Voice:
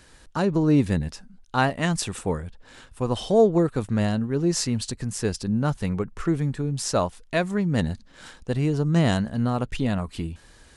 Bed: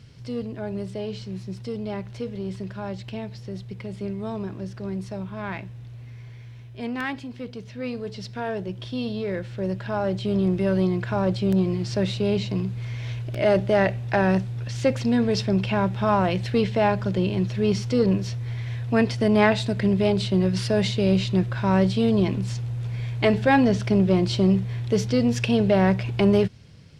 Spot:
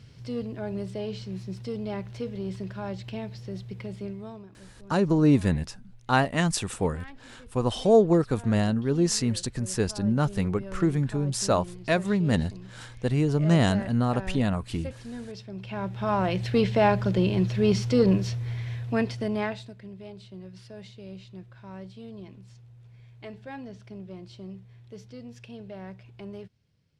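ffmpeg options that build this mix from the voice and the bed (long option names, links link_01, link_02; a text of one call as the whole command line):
ffmpeg -i stem1.wav -i stem2.wav -filter_complex "[0:a]adelay=4550,volume=-0.5dB[link_01];[1:a]volume=15.5dB,afade=type=out:start_time=3.85:duration=0.62:silence=0.16788,afade=type=in:start_time=15.54:duration=1.18:silence=0.133352,afade=type=out:start_time=18.21:duration=1.55:silence=0.0794328[link_02];[link_01][link_02]amix=inputs=2:normalize=0" out.wav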